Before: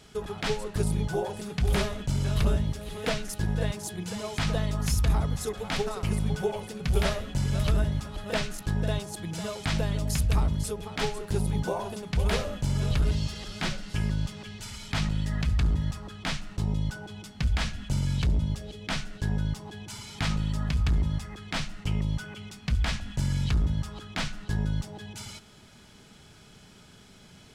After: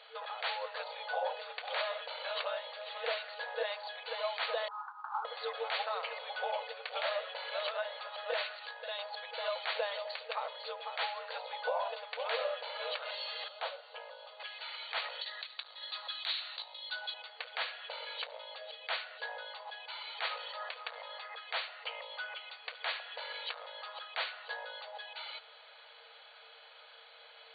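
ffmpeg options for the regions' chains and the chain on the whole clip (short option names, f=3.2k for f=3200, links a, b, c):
-filter_complex "[0:a]asettb=1/sr,asplit=3[a][b][c];[a]atrim=end=4.684[d];[b]atrim=start=4.68:end=5.25,asetpts=PTS-STARTPTS,afade=t=in:d=0.004:c=qsin,afade=t=out:st=0.566:d=0.004:c=qsin,asuperpass=centerf=1100:order=12:qfactor=1.6,acrusher=bits=7:mode=log:mix=0:aa=0.000001[e];[c]atrim=start=5.246[f];[d][e]acrossfade=d=0.004:c1=hsin:c2=qsin[g];[g][f]acrossfade=d=0.004:c1=qsin:c2=hsin,asettb=1/sr,asplit=3[h][i][j];[h]atrim=end=8.564[k];[i]atrim=start=8.56:end=8.99,asetpts=PTS-STARTPTS,afade=t=in:d=0.004:c=qsin,afade=t=out:st=0.426:d=0.004:c=qsin,tiltshelf=f=1.4k:g=-4.5,acompressor=threshold=-33dB:ratio=4:attack=3.2:release=140:knee=1:detection=peak[l];[j]atrim=start=8.986[m];[k][l]acrossfade=d=0.004:c1=hsin:c2=qsin[n];[n][m]acrossfade=d=0.004:c1=qsin:c2=hsin,asettb=1/sr,asplit=3[o][p][q];[o]atrim=end=13.484[r];[p]atrim=start=13.48:end=14.4,asetpts=PTS-STARTPTS,afade=t=in:d=0.004:c=qsin,afade=t=out:st=0.916:d=0.004:c=qsin,lowpass=3.2k,equalizer=f=2k:t=o:w=1.4:g=-13[s];[q]atrim=start=14.396[t];[r][s]acrossfade=d=0.004:c1=hsin:c2=qsin[u];[u][t]acrossfade=d=0.004:c1=qsin:c2=hsin,asettb=1/sr,asplit=3[v][w][x];[v]atrim=end=15.214[y];[w]atrim=start=15.21:end=17.14,asetpts=PTS-STARTPTS,afade=t=in:d=0.004:c=qsin,afade=t=out:st=1.926:d=0.004:c=qsin,equalizer=f=310:t=o:w=1.6:g=-13,acompressor=threshold=-31dB:ratio=12:attack=3.2:release=140:knee=1:detection=peak,lowpass=f=4k:t=q:w=6.2[z];[x]atrim=start=17.136[aa];[y][z]acrossfade=d=0.004:c1=hsin:c2=qsin[ab];[ab][aa]acrossfade=d=0.004:c1=qsin:c2=hsin,afftfilt=real='re*between(b*sr/4096,450,4600)':imag='im*between(b*sr/4096,450,4600)':win_size=4096:overlap=0.75,acontrast=40,alimiter=limit=-20.5dB:level=0:latency=1:release=102,volume=-3.5dB"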